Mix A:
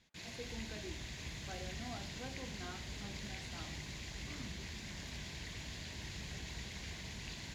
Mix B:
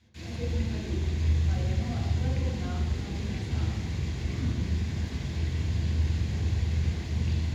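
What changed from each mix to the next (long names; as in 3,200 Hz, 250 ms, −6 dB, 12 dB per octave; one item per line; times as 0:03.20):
reverb: on, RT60 1.1 s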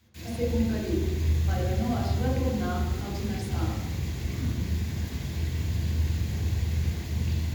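speech +9.0 dB
master: remove low-pass filter 6,300 Hz 12 dB per octave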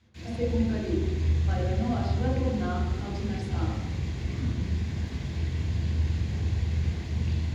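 master: add high-frequency loss of the air 87 metres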